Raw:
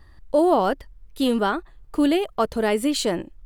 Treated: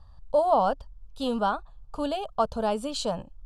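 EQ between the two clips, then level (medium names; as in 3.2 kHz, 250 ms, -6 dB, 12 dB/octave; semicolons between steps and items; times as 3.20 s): distance through air 76 m; static phaser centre 830 Hz, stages 4; 0.0 dB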